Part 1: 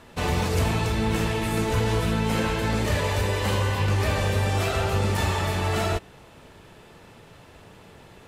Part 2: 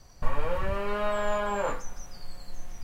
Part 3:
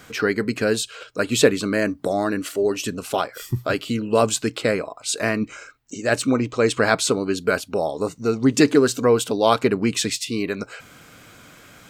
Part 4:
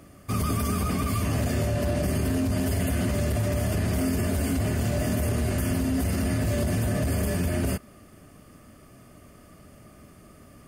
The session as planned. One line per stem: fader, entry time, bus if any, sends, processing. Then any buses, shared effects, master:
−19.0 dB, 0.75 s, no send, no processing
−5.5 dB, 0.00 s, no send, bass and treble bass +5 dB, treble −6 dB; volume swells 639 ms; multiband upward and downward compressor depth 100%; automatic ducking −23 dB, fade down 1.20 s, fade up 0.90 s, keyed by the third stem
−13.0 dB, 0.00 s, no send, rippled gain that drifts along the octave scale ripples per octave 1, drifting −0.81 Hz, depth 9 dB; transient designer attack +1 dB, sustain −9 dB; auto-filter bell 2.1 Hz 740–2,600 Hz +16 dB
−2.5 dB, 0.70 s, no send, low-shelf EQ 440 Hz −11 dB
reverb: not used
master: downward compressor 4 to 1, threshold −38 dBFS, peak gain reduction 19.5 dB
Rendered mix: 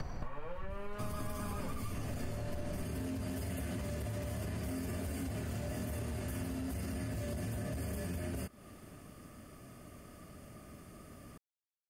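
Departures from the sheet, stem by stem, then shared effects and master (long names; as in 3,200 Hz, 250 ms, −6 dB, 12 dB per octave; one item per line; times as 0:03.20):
stem 2: missing volume swells 639 ms
stem 3: muted
stem 4: missing low-shelf EQ 440 Hz −11 dB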